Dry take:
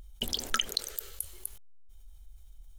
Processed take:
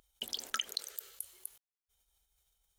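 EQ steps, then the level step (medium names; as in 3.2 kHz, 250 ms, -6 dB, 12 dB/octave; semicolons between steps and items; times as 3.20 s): high-pass 620 Hz 6 dB/octave; -6.0 dB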